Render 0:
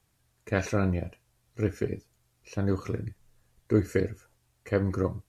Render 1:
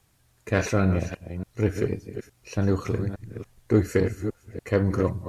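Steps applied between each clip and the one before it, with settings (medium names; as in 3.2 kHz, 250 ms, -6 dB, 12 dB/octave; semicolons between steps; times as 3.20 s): chunks repeated in reverse 287 ms, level -11 dB; in parallel at -3 dB: saturation -27.5 dBFS, distortion -7 dB; on the sum: trim +1.5 dB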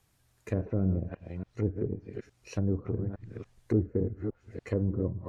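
low-pass that closes with the level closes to 410 Hz, closed at -21 dBFS; trim -5 dB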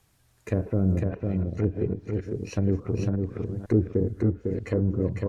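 delay 502 ms -4 dB; trim +4.5 dB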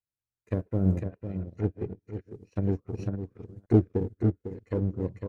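in parallel at -4 dB: one-sided clip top -26 dBFS; on the sum: upward expansion 2.5:1, over -40 dBFS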